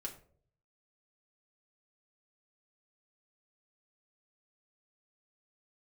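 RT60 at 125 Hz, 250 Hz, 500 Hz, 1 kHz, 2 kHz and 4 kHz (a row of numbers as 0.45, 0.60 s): 0.95, 0.60, 0.65, 0.40, 0.35, 0.30 s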